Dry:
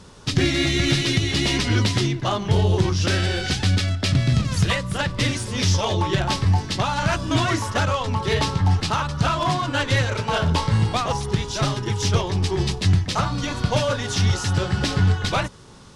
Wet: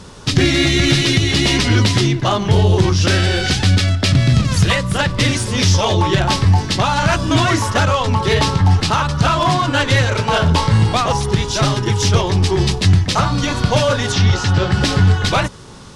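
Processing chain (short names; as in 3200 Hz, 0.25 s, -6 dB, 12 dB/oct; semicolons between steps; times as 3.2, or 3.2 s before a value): 14.12–14.72 LPF 5100 Hz 12 dB/oct; in parallel at -2 dB: limiter -16.5 dBFS, peak gain reduction 9.5 dB; on the sum: gain +3 dB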